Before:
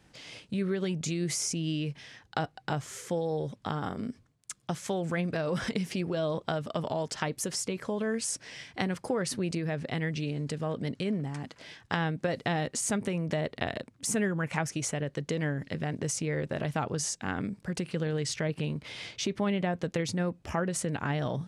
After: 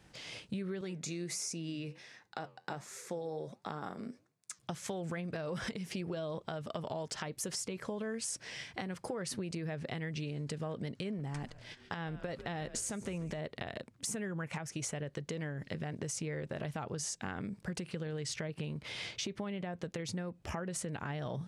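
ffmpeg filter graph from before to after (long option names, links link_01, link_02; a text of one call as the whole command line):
ffmpeg -i in.wav -filter_complex "[0:a]asettb=1/sr,asplit=3[link_01][link_02][link_03];[link_01]atrim=end=0.814[link_04];[link_02]atrim=start=0.81:end=4.59,asetpts=PTS-STARTPTS,afade=type=in:duration=0.004:curve=qsin,afade=type=out:start_time=3.776:duration=0.004:curve=qsin,highpass=190,bandreject=frequency=3100:width=6.2,flanger=delay=5.9:depth=5.9:regen=-84:speed=1.4:shape=sinusoidal[link_05];[link_03]atrim=start=4.586[link_06];[link_04][link_05]acrossfade=duration=0.004:curve1=hsin:curve2=qsin[link_07];[link_07][link_06]acrossfade=duration=0.004:curve1=qsin:curve2=hsin,asettb=1/sr,asplit=3[link_08][link_09][link_10];[link_08]atrim=end=11.194[link_11];[link_09]atrim=start=11.19:end=13.39,asetpts=PTS-STARTPTS,afade=type=in:duration=0.004:curve=qsin,afade=type=out:start_time=2.196:duration=0.004:curve=qsin,agate=range=-14dB:threshold=-48dB:ratio=16:release=100:detection=peak,asplit=5[link_12][link_13][link_14][link_15][link_16];[link_13]adelay=143,afreqshift=-130,volume=-18.5dB[link_17];[link_14]adelay=286,afreqshift=-260,volume=-25.2dB[link_18];[link_15]adelay=429,afreqshift=-390,volume=-32dB[link_19];[link_16]adelay=572,afreqshift=-520,volume=-38.7dB[link_20];[link_12][link_17][link_18][link_19][link_20]amix=inputs=5:normalize=0,atrim=end_sample=97020,acompressor=mode=upward:threshold=-47dB:ratio=2.5:attack=3.2:release=140:knee=2.83:detection=peak[link_21];[link_10]atrim=start=13.386[link_22];[link_11][link_21]acrossfade=duration=0.004:curve1=hsin:curve2=qsin[link_23];[link_23][link_22]acrossfade=duration=0.004:curve1=qsin:curve2=hsin,equalizer=frequency=270:width_type=o:width=0.21:gain=-5.5,alimiter=limit=-22.5dB:level=0:latency=1:release=353,acompressor=threshold=-35dB:ratio=6" out.wav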